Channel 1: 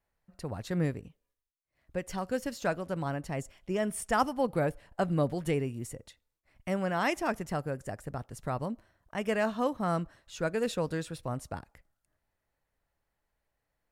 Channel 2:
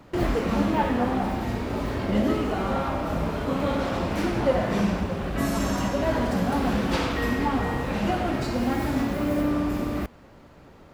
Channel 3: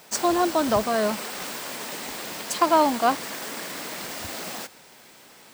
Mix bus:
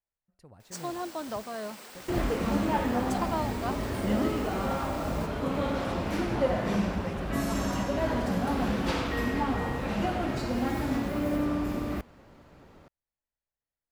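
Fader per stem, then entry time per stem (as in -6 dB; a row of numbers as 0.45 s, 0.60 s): -16.0 dB, -4.0 dB, -13.5 dB; 0.00 s, 1.95 s, 0.60 s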